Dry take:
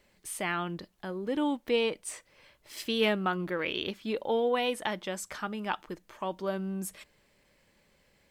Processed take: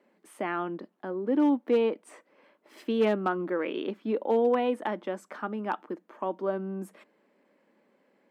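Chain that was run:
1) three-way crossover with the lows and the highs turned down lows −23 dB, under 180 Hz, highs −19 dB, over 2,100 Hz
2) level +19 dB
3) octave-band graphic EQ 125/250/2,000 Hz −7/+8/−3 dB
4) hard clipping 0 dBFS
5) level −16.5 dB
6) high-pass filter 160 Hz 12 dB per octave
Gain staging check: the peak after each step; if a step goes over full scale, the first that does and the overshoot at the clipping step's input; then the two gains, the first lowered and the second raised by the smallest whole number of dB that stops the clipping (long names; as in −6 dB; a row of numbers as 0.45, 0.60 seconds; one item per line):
−16.0, +3.0, +3.5, 0.0, −16.5, −14.5 dBFS
step 2, 3.5 dB
step 2 +15 dB, step 5 −12.5 dB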